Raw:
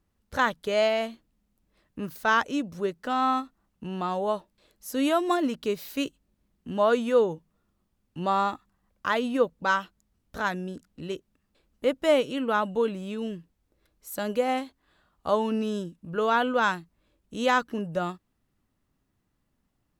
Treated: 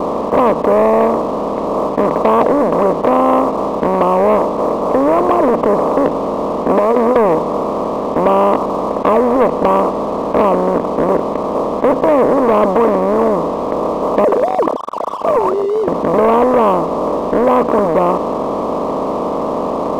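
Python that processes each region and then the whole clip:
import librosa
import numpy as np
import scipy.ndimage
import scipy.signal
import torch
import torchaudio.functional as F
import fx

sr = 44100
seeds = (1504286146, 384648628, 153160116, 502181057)

y = fx.chain(x, sr, fx.highpass(hz=190.0, slope=24),
    fx.over_compress(threshold_db=-30.0, ratio=-1.0), at=(6.69, 7.16))
y = fx.chain(y, sr, fx.sine_speech(),
    fx.over_compress(threshold_db=-31.0, ratio=-1.0), at=(14.24, 15.88))
y = fx.bin_compress(y, sr, power=0.2)
y = scipy.signal.sosfilt(scipy.signal.butter(16, 1200.0, 'lowpass', fs=sr, output='sos'), y)
y = fx.leveller(y, sr, passes=2)
y = y * 10.0 ** (-1.0 / 20.0)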